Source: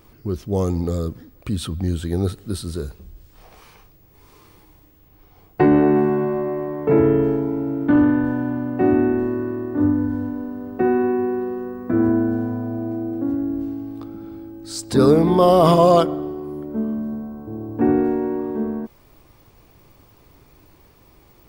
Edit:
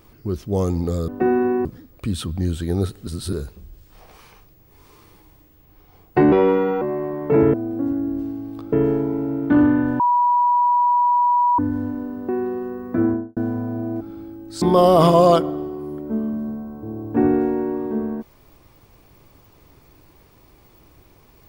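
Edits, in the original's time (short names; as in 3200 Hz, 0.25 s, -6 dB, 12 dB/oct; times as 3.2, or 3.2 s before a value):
2.5–2.76 reverse
5.75–6.39 speed 129%
8.38–9.97 bleep 972 Hz -13.5 dBFS
10.67–11.24 move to 1.08
11.92–12.32 studio fade out
12.96–14.15 move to 7.11
14.76–15.26 cut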